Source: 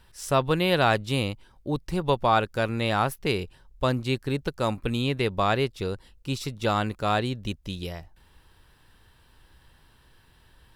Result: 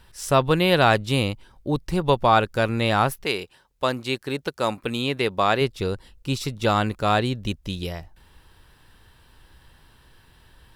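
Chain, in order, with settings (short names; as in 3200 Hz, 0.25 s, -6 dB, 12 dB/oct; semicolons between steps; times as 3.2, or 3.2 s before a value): 3.23–5.6 HPF 580 Hz -> 230 Hz 6 dB/oct; gain +4 dB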